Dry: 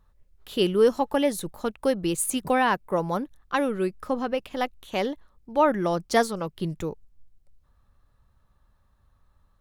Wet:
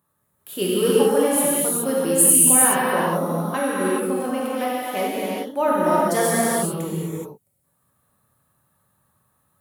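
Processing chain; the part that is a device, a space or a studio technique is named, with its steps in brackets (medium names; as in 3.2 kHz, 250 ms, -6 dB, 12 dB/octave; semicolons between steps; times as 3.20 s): budget condenser microphone (high-pass 110 Hz 24 dB/octave; resonant high shelf 7.3 kHz +13 dB, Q 1.5); gated-style reverb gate 450 ms flat, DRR -7.5 dB; trim -4 dB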